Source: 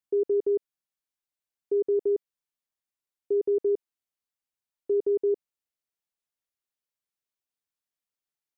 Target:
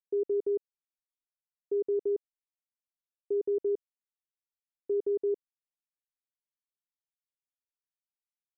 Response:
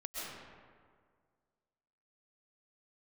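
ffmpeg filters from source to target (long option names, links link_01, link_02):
-af "anlmdn=0.251,volume=-4.5dB"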